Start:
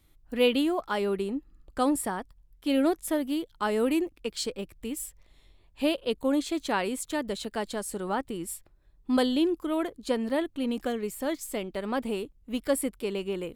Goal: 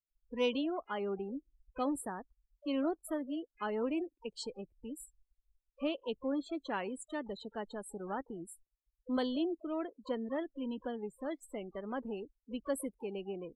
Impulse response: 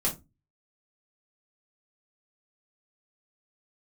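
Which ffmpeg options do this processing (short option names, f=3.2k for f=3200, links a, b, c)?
-filter_complex "[0:a]asplit=2[a][b];[b]asetrate=88200,aresample=44100,atempo=0.5,volume=-16dB[c];[a][c]amix=inputs=2:normalize=0,afftdn=nr=34:nf=-35,volume=-9dB"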